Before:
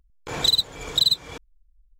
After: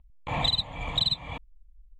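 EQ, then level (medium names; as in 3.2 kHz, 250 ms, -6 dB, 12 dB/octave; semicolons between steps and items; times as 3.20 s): distance through air 77 m; treble shelf 4.8 kHz -11.5 dB; static phaser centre 1.5 kHz, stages 6; +5.5 dB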